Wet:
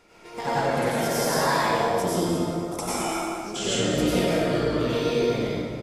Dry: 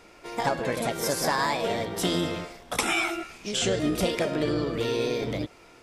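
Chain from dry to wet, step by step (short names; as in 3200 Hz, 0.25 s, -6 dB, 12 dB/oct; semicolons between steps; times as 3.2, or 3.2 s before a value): 1.68–3.56 band shelf 2400 Hz -11 dB; echo 0.228 s -11 dB; plate-style reverb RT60 1.9 s, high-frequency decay 0.55×, pre-delay 80 ms, DRR -8.5 dB; gain -6 dB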